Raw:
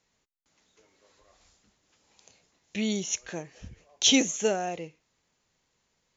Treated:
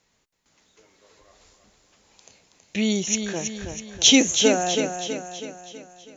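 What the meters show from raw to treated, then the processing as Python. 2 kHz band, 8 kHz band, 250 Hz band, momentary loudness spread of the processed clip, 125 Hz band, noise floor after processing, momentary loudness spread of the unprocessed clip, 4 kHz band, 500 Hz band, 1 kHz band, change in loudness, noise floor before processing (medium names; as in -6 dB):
+7.0 dB, no reading, +7.0 dB, 19 LU, +7.0 dB, -69 dBFS, 19 LU, +7.0 dB, +7.0 dB, +7.0 dB, +6.0 dB, -76 dBFS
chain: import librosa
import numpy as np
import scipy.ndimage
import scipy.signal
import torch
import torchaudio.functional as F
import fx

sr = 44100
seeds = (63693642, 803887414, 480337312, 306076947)

y = fx.echo_feedback(x, sr, ms=324, feedback_pct=51, wet_db=-7.0)
y = y * librosa.db_to_amplitude(6.0)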